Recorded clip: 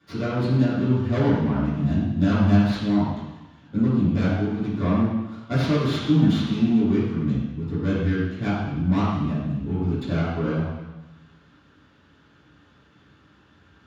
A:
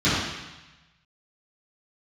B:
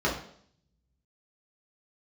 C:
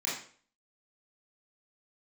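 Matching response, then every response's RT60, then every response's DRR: A; 1.1, 0.60, 0.45 s; -15.5, -6.0, -8.0 dB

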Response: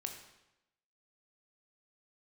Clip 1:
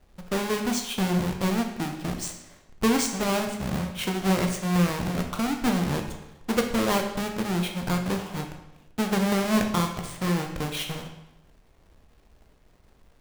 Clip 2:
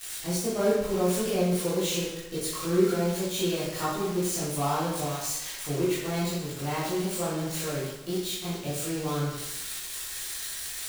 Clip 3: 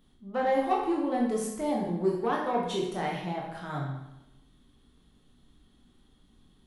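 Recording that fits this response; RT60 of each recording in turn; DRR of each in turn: 1; 0.90, 0.90, 0.90 s; 3.5, -10.5, -3.0 dB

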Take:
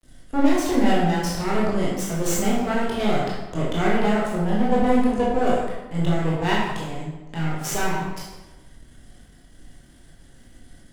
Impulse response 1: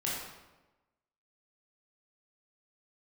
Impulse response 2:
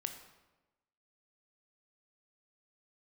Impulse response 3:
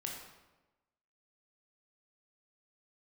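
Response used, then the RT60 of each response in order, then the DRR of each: 1; 1.1, 1.1, 1.1 s; -6.5, 6.0, -1.0 dB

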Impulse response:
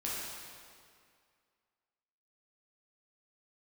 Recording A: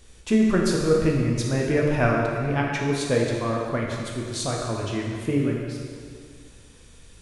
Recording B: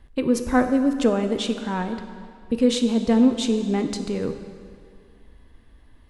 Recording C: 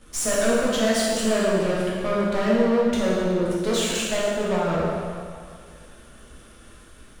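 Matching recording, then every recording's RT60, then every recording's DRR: C; 2.2, 2.2, 2.2 s; -2.0, 7.0, -7.0 dB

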